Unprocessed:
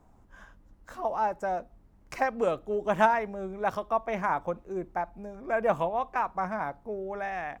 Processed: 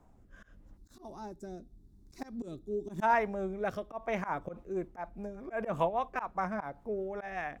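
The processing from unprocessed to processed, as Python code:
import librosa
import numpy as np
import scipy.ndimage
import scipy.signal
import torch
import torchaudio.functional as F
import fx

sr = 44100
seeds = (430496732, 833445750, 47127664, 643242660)

y = fx.rotary_switch(x, sr, hz=0.85, then_hz=5.0, switch_at_s=3.93)
y = fx.auto_swell(y, sr, attack_ms=113.0)
y = fx.spec_box(y, sr, start_s=0.77, length_s=2.25, low_hz=420.0, high_hz=3400.0, gain_db=-16)
y = y * 10.0 ** (1.0 / 20.0)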